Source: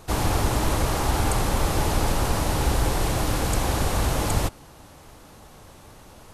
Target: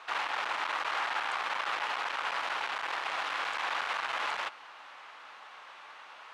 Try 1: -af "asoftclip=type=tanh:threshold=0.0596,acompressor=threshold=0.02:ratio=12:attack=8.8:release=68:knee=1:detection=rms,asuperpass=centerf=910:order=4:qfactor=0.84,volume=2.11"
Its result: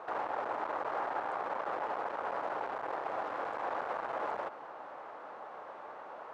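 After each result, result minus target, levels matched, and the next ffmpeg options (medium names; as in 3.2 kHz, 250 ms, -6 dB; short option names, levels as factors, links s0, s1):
compression: peak gain reduction +6 dB; 2 kHz band -5.0 dB
-af "asoftclip=type=tanh:threshold=0.0596,acompressor=threshold=0.0422:ratio=12:attack=8.8:release=68:knee=1:detection=rms,asuperpass=centerf=910:order=4:qfactor=0.84,volume=2.11"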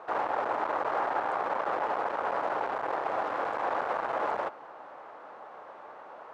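2 kHz band -6.5 dB
-af "asoftclip=type=tanh:threshold=0.0596,acompressor=threshold=0.0422:ratio=12:attack=8.8:release=68:knee=1:detection=rms,asuperpass=centerf=1800:order=4:qfactor=0.84,volume=2.11"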